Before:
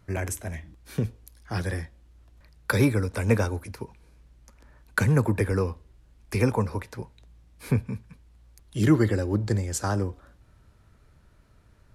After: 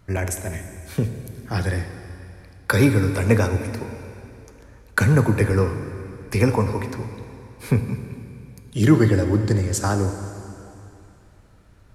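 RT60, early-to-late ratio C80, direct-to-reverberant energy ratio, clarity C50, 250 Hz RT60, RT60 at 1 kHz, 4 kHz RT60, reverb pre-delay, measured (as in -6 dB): 2.8 s, 9.0 dB, 7.0 dB, 8.5 dB, 2.7 s, 2.8 s, 2.7 s, 5 ms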